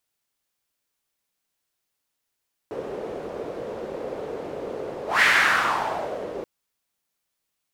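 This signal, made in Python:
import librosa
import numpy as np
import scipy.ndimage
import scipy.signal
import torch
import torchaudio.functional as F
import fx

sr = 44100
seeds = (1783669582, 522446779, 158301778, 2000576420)

y = fx.whoosh(sr, seeds[0], length_s=3.73, peak_s=2.51, rise_s=0.17, fall_s=1.16, ends_hz=470.0, peak_hz=1900.0, q=3.3, swell_db=15.5)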